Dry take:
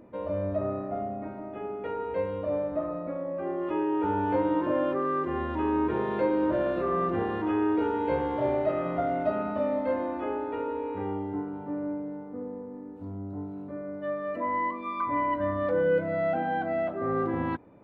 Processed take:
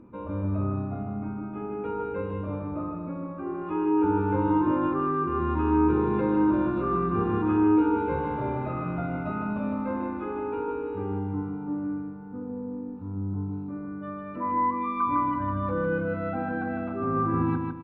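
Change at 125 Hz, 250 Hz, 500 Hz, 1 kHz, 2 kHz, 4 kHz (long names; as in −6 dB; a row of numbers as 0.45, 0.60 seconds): +7.5 dB, +4.5 dB, −3.0 dB, +1.5 dB, −0.5 dB, can't be measured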